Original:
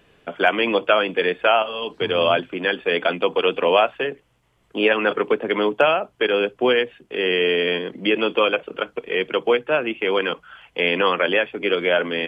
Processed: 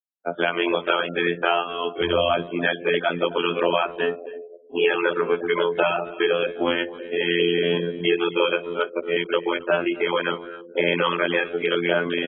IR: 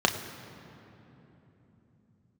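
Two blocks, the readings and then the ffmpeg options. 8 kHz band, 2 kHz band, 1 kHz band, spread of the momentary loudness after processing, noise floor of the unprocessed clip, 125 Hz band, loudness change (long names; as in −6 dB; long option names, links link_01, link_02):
can't be measured, −2.5 dB, −3.0 dB, 6 LU, −63 dBFS, +3.0 dB, −2.5 dB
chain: -filter_complex "[0:a]asplit=2[link_01][link_02];[1:a]atrim=start_sample=2205,asetrate=70560,aresample=44100[link_03];[link_02][link_03]afir=irnorm=-1:irlink=0,volume=-20dB[link_04];[link_01][link_04]amix=inputs=2:normalize=0,adynamicequalizer=threshold=0.0316:dfrequency=620:dqfactor=1.5:tfrequency=620:tqfactor=1.5:attack=5:release=100:ratio=0.375:range=2:mode=cutabove:tftype=bell,afftfilt=real='re*gte(hypot(re,im),0.0398)':imag='im*gte(hypot(re,im),0.0398)':win_size=1024:overlap=0.75,highshelf=frequency=3500:gain=-6.5,afftfilt=real='hypot(re,im)*cos(PI*b)':imag='0':win_size=2048:overlap=0.75,acrossover=split=170|3000[link_05][link_06][link_07];[link_06]acompressor=threshold=-28dB:ratio=3[link_08];[link_05][link_08][link_07]amix=inputs=3:normalize=0,highpass=frequency=44:width=0.5412,highpass=frequency=44:width=1.3066,asplit=2[link_09][link_10];[link_10]adelay=270,highpass=300,lowpass=3400,asoftclip=type=hard:threshold=-21dB,volume=-18dB[link_11];[link_09][link_11]amix=inputs=2:normalize=0,volume=6.5dB" -ar 22050 -c:a aac -b:a 16k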